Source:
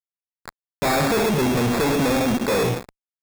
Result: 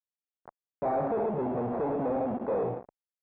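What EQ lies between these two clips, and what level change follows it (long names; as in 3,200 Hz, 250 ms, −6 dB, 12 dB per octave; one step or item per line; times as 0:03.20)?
resonant band-pass 710 Hz, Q 1.8
high-frequency loss of the air 410 metres
spectral tilt −3.5 dB per octave
−5.0 dB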